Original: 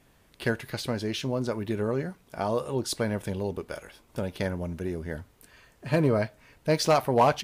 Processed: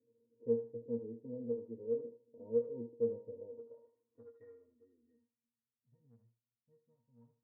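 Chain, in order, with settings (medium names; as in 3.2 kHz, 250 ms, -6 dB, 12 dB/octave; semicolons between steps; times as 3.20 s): 1.51–2.04 s: tilt shelf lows -5.5 dB, about 630 Hz; 3.80–5.18 s: comb 2.7 ms, depth 89%; low-pass sweep 390 Hz -> 170 Hz, 4.68–5.89 s; pitch-class resonator A#, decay 0.31 s; in parallel at -11 dB: saturation -34 dBFS, distortion -9 dB; on the sum: band-pass sweep 430 Hz -> 4.2 kHz, 3.10–5.07 s; on a send: thinning echo 76 ms, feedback 35%, high-pass 450 Hz, level -8 dB; on the sum: trim +3 dB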